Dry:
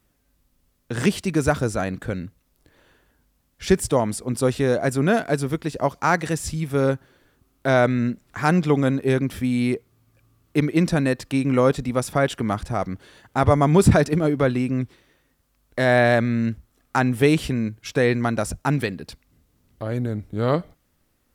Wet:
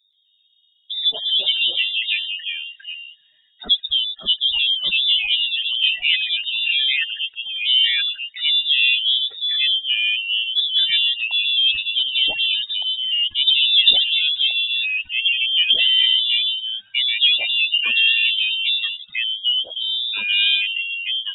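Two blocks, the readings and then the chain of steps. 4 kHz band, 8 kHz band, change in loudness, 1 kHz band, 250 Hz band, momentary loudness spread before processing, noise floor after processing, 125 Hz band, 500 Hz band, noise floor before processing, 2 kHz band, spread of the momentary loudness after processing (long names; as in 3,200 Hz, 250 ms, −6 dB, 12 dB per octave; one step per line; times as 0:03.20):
+25.5 dB, below −40 dB, +5.0 dB, below −20 dB, below −30 dB, 11 LU, −59 dBFS, below −35 dB, below −25 dB, −67 dBFS, +7.0 dB, 8 LU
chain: expanding power law on the bin magnitudes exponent 2.8
voice inversion scrambler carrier 3,700 Hz
delay with pitch and tempo change per echo 128 ms, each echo −2 semitones, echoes 2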